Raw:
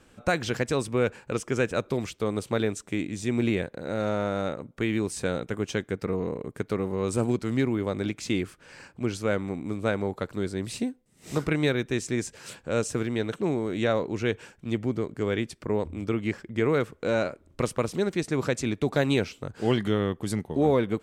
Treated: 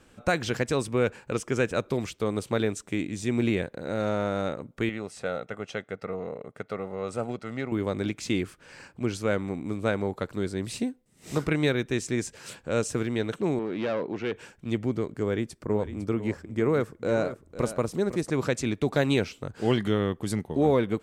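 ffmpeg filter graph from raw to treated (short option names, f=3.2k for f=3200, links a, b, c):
-filter_complex "[0:a]asettb=1/sr,asplit=3[a][b][c];[a]atrim=end=4.894[d];[b]atrim=start=4.89:end=7.72,asetpts=PTS-STARTPTS,afade=t=in:d=0.004:c=qsin,afade=t=out:st=2.826:d=0.004:c=qsin,highpass=f=440:p=1,aemphasis=mode=reproduction:type=75kf,aecho=1:1:1.5:0.52,atrim=end_sample=124803[e];[c]atrim=start=7.716[f];[d][e]acrossfade=d=0.004:c1=hsin:c2=qsin[g];[g][f]acrossfade=d=0.004:c1=qsin:c2=hsin,asettb=1/sr,asplit=3[h][i][j];[h]atrim=end=13.594[k];[i]atrim=start=13.59:end=14.36,asetpts=PTS-STARTPTS,afade=t=in:d=0.004:c=qsin,afade=t=out:st=0.766:d=0.004:c=qsin,volume=24.5dB,asoftclip=hard,volume=-24.5dB,highpass=170,lowpass=3.2k[l];[j]atrim=start=14.356[m];[k][l]acrossfade=d=0.004:c1=hsin:c2=qsin[n];[n][m]acrossfade=d=0.004:c1=qsin:c2=hsin,asettb=1/sr,asplit=3[o][p][q];[o]atrim=end=15.204[r];[p]atrim=start=15.2:end=18.3,asetpts=PTS-STARTPTS,afade=t=in:d=0.004:c=qsin,afade=t=out:st=3.096:d=0.004:c=qsin,equalizer=f=2.9k:w=0.86:g=-7,aecho=1:1:504:0.237,atrim=end_sample=136710[s];[q]atrim=start=18.296[t];[r][s]acrossfade=d=0.004:c1=hsin:c2=qsin[u];[u][t]acrossfade=d=0.004:c1=qsin:c2=hsin"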